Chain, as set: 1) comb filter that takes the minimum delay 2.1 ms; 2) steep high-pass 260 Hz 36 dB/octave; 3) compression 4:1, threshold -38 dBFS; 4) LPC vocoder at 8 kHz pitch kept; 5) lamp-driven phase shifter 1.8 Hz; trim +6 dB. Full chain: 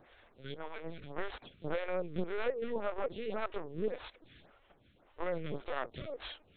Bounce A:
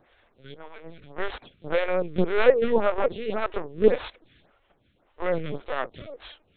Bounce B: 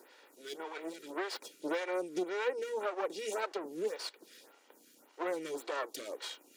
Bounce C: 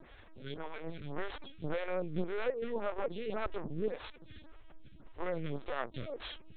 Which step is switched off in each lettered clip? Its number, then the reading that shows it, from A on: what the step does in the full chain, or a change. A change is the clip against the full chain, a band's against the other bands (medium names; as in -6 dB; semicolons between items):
3, mean gain reduction 7.5 dB; 4, 4 kHz band +3.5 dB; 2, 125 Hz band +3.0 dB